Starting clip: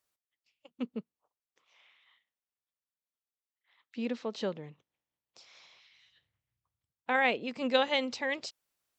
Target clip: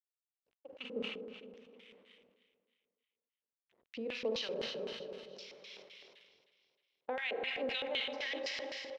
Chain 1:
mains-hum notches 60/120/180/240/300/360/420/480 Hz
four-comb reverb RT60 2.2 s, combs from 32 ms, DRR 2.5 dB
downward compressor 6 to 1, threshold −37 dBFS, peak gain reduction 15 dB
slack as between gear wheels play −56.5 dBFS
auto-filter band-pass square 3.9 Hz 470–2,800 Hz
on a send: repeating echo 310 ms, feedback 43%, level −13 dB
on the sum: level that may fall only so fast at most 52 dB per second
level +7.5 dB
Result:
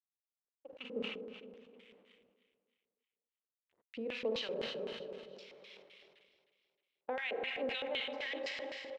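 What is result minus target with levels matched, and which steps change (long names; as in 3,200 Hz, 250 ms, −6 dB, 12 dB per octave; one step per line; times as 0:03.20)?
8,000 Hz band −5.5 dB
add after downward compressor: low-pass with resonance 5,800 Hz, resonance Q 2.8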